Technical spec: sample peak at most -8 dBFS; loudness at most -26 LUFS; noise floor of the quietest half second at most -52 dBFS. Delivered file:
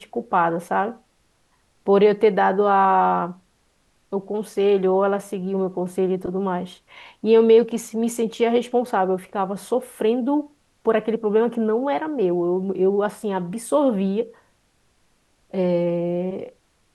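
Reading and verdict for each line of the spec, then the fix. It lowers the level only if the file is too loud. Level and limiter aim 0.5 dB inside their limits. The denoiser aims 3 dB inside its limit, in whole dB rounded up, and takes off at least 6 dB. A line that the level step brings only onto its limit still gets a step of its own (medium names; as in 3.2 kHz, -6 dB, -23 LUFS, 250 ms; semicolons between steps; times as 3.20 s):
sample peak -5.5 dBFS: fail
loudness -21.5 LUFS: fail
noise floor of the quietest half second -64 dBFS: pass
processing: trim -5 dB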